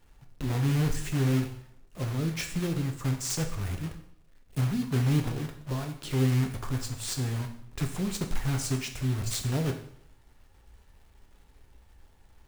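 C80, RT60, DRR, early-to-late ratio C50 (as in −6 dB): 12.5 dB, 0.70 s, 4.5 dB, 9.5 dB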